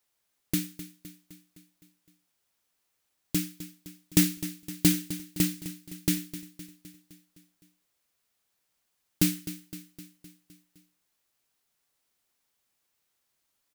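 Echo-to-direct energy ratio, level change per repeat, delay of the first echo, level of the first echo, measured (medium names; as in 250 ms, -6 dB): -12.0 dB, -4.5 dB, 257 ms, -14.0 dB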